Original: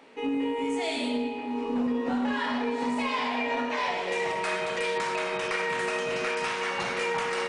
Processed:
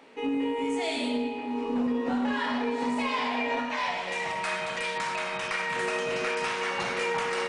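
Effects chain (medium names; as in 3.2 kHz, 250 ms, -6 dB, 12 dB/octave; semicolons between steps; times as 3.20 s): 3.59–5.76 s: peaking EQ 410 Hz -13.5 dB 0.52 oct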